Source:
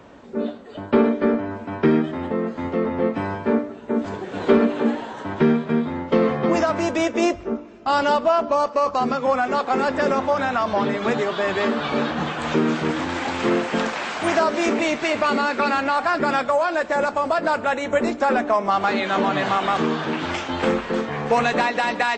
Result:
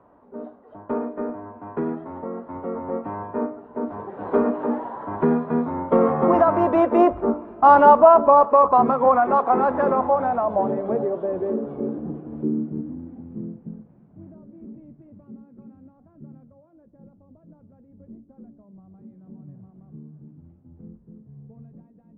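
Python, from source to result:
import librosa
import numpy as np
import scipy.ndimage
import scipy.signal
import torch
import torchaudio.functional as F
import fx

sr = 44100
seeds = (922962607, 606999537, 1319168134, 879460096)

y = fx.doppler_pass(x, sr, speed_mps=12, closest_m=16.0, pass_at_s=7.72)
y = fx.filter_sweep_lowpass(y, sr, from_hz=1000.0, to_hz=150.0, start_s=9.89, end_s=13.8, q=2.0)
y = F.gain(torch.from_numpy(y), 3.5).numpy()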